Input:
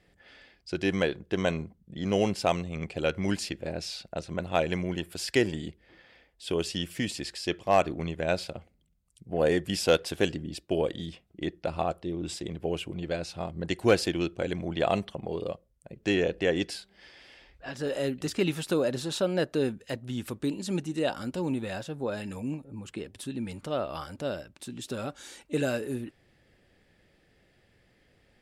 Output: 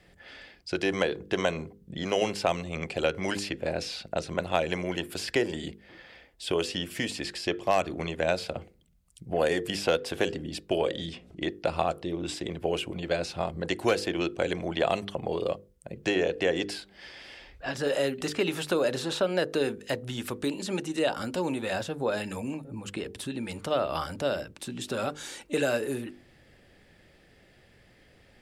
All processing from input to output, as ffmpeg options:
-filter_complex "[0:a]asettb=1/sr,asplit=3[a][b][c];[a]atrim=end=10.784[d];[b]atrim=start=10.78:end=11.48,asetpts=PTS-STARTPTS,afade=t=in:d=0.004:c=qsin,afade=t=out:st=0.696:d=0.004:c=qsin,lowpass=8.5k,bandreject=f=60:t=h:w=6,bandreject=f=120:t=h:w=6,bandreject=f=180:t=h:w=6,bandreject=f=240:t=h:w=6,bandreject=f=300:t=h:w=6,bandreject=f=360:t=h:w=6,bandreject=f=420:t=h:w=6,bandreject=f=480:t=h:w=6,bandreject=f=540:t=h:w=6,bandreject=f=600:t=h:w=6,acompressor=mode=upward:threshold=-45dB:ratio=2.5:attack=3.2:release=140:knee=2.83:detection=peak[e];[c]atrim=start=11.476[f];[d][e]acrossfade=d=0.004:c1=hsin:c2=qsin[g];[g][f]acrossfade=d=0.004:c1=qsin:c2=hsin,bandreject=f=50:t=h:w=6,bandreject=f=100:t=h:w=6,bandreject=f=150:t=h:w=6,bandreject=f=200:t=h:w=6,bandreject=f=250:t=h:w=6,bandreject=f=300:t=h:w=6,bandreject=f=350:t=h:w=6,bandreject=f=400:t=h:w=6,bandreject=f=450:t=h:w=6,bandreject=f=500:t=h:w=6,acrossover=split=380|1300|3300[h][i][j][k];[h]acompressor=threshold=-43dB:ratio=4[l];[i]acompressor=threshold=-31dB:ratio=4[m];[j]acompressor=threshold=-41dB:ratio=4[n];[k]acompressor=threshold=-46dB:ratio=4[o];[l][m][n][o]amix=inputs=4:normalize=0,volume=6.5dB"

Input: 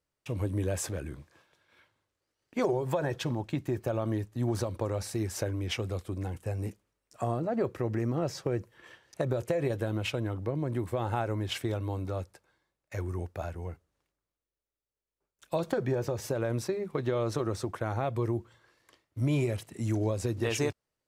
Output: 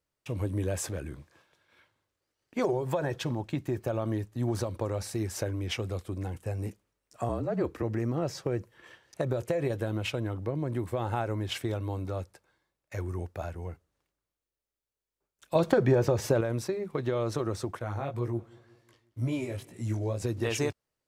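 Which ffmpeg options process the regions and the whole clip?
-filter_complex "[0:a]asettb=1/sr,asplit=3[a][b][c];[a]atrim=end=7.294[d];[b]atrim=start=7.29:end=7.83,asetpts=PTS-STARTPTS,afade=t=in:d=0.004:c=qsin,afade=t=out:st=0.536:d=0.004:c=qsin,afreqshift=-41,highpass=79[e];[c]atrim=start=7.826[f];[d][e]acrossfade=d=0.004:c1=hsin:c2=qsin[g];[g][f]acrossfade=d=0.004:c1=qsin:c2=hsin,asettb=1/sr,asplit=3[h][i][j];[h]atrim=end=15.554[k];[i]atrim=start=15.55:end=16.41,asetpts=PTS-STARTPTS,afade=t=in:d=0.004:c=qsin,afade=t=out:st=0.856:d=0.004:c=qsin,highshelf=f=5.8k:g=-5.5,acontrast=71[l];[j]atrim=start=16.406[m];[k][l]acrossfade=d=0.004:c1=hsin:c2=qsin[n];[n][m]acrossfade=d=0.004:c1=qsin:c2=hsin,asettb=1/sr,asplit=3[o][p][q];[o]atrim=end=17.794[r];[p]atrim=start=17.79:end=20.22,asetpts=PTS-STARTPTS,afade=t=in:d=0.004:c=qsin,afade=t=out:st=2.426:d=0.004:c=qsin,flanger=delay=16:depth=5:speed=2,aecho=1:1:180|360|540|720:0.0708|0.0375|0.0199|0.0105,atrim=end_sample=107163[s];[q]atrim=start=20.216[t];[r][s]acrossfade=d=0.004:c1=hsin:c2=qsin[u];[u][t]acrossfade=d=0.004:c1=qsin:c2=hsin"

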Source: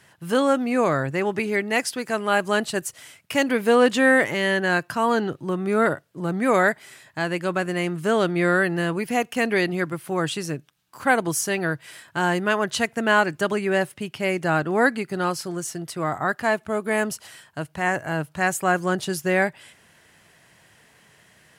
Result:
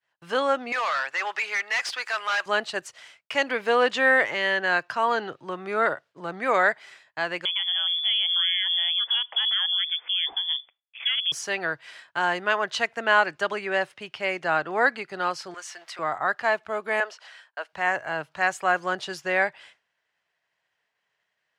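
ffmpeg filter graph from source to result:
-filter_complex "[0:a]asettb=1/sr,asplit=3[a][b][c];[a]atrim=end=0.724[d];[b]atrim=start=0.72:end=2.46,asetpts=PTS-STARTPTS,afade=t=in:d=0.004:c=qsin,afade=t=out:st=1.736:d=0.004:c=qsin,highpass=1.1k,acontrast=83,asoftclip=type=hard:threshold=-22dB[e];[c]atrim=start=2.456[f];[d][e]acrossfade=d=0.004:c1=hsin:c2=qsin[g];[g][f]acrossfade=d=0.004:c1=qsin:c2=hsin,asettb=1/sr,asplit=3[h][i][j];[h]atrim=end=7.454[k];[i]atrim=start=7.45:end=11.32,asetpts=PTS-STARTPTS,afade=t=in:d=0.004:c=qsin,afade=t=out:st=3.866:d=0.004:c=qsin,acompressor=threshold=-36dB:ratio=2:attack=3.2:release=140:knee=1:detection=peak,equalizer=f=240:w=0.65:g=11.5,lowpass=f=3.1k:t=q:w=0.5098,lowpass=f=3.1k:t=q:w=0.6013,lowpass=f=3.1k:t=q:w=0.9,lowpass=f=3.1k:t=q:w=2.563,afreqshift=-3600[l];[j]atrim=start=11.316[m];[k][l]acrossfade=d=0.004:c1=hsin:c2=qsin[n];[n][m]acrossfade=d=0.004:c1=qsin:c2=hsin,asettb=1/sr,asplit=3[o][p][q];[o]atrim=end=15.544[r];[p]atrim=start=15.54:end=15.99,asetpts=PTS-STARTPTS,afade=t=in:d=0.004:c=qsin,afade=t=out:st=0.446:d=0.004:c=qsin,aeval=exprs='val(0)+0.5*0.00562*sgn(val(0))':c=same,highpass=770,equalizer=f=2k:w=1.5:g=4[s];[q]atrim=start=15.986[t];[r][s]acrossfade=d=0.004:c1=hsin:c2=qsin[u];[u][t]acrossfade=d=0.004:c1=qsin:c2=hsin,asettb=1/sr,asplit=3[v][w][x];[v]atrim=end=17.004[y];[w]atrim=start=17:end=17.73,asetpts=PTS-STARTPTS,afade=t=in:d=0.004:c=qsin,afade=t=out:st=0.726:d=0.004:c=qsin,acrossover=split=5600[z][aa];[aa]acompressor=threshold=-52dB:ratio=4:attack=1:release=60[ab];[z][ab]amix=inputs=2:normalize=0,highpass=f=430:w=0.5412,highpass=f=430:w=1.3066,equalizer=f=1.6k:w=4.9:g=4[ac];[x]atrim=start=17.726[ad];[y][ac]acrossfade=d=0.004:c1=hsin:c2=qsin[ae];[ae][ad]acrossfade=d=0.004:c1=qsin:c2=hsin,agate=range=-33dB:threshold=-42dB:ratio=3:detection=peak,acrossover=split=490 5900:gain=0.158 1 0.0708[af][ag][ah];[af][ag][ah]amix=inputs=3:normalize=0"

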